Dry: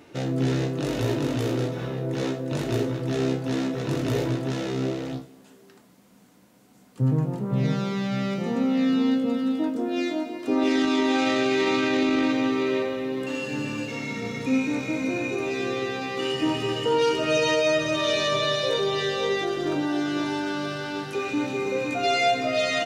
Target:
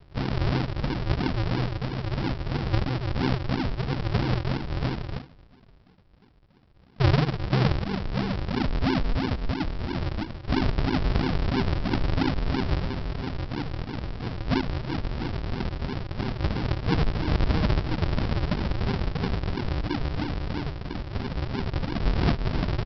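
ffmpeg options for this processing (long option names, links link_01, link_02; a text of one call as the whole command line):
ffmpeg -i in.wav -af "asubboost=boost=3:cutoff=110,aresample=11025,acrusher=samples=34:mix=1:aa=0.000001:lfo=1:lforange=34:lforate=3,aresample=44100" out.wav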